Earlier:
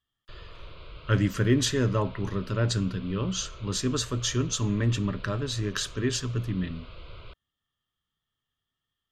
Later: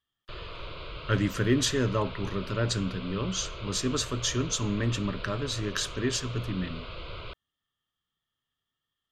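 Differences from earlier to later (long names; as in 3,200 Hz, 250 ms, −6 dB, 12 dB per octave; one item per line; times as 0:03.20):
background +8.0 dB
master: add low-shelf EQ 140 Hz −6.5 dB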